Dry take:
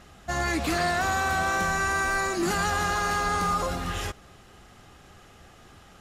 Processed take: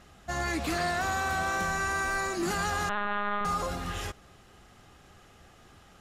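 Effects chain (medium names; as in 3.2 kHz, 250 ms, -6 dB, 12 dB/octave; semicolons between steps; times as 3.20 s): 2.89–3.45 s: LPC vocoder at 8 kHz pitch kept; trim -4 dB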